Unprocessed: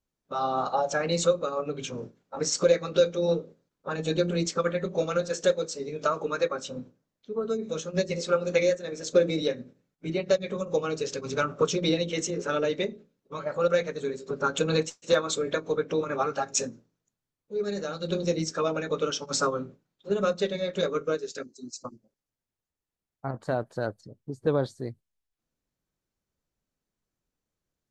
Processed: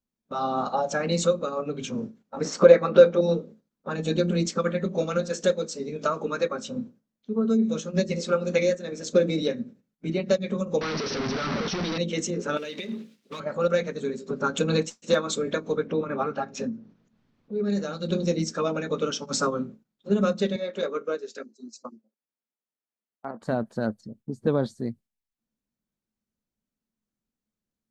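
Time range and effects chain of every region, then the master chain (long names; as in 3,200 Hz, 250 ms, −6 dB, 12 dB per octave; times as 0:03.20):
0:02.45–0:03.21: low-pass filter 2,300 Hz 6 dB per octave + parametric band 1,000 Hz +11 dB 2.7 octaves
0:10.81–0:11.98: sign of each sample alone + Chebyshev low-pass with heavy ripple 5,900 Hz, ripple 3 dB
0:12.57–0:13.40: mu-law and A-law mismatch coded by mu + meter weighting curve D + downward compressor 10 to 1, threshold −32 dBFS
0:15.87–0:17.70: upward compression, threshold −41 dBFS + high-frequency loss of the air 210 metres
0:20.56–0:23.42: high-pass filter 380 Hz + high-shelf EQ 4,400 Hz −10 dB
whole clip: parametric band 220 Hz +14.5 dB 0.39 octaves; noise gate −50 dBFS, range −6 dB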